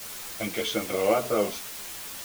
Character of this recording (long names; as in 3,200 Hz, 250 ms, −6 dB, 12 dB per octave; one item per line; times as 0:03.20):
a quantiser's noise floor 6 bits, dither triangular
a shimmering, thickened sound